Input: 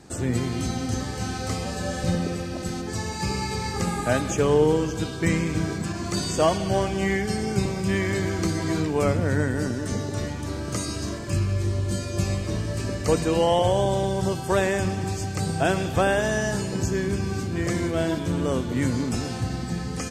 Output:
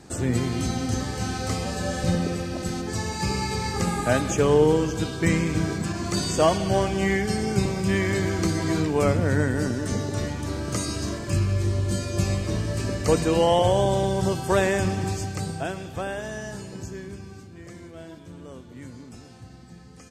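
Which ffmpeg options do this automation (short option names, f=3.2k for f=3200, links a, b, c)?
-af "volume=1dB,afade=t=out:st=15.07:d=0.65:silence=0.298538,afade=t=out:st=16.69:d=0.86:silence=0.421697"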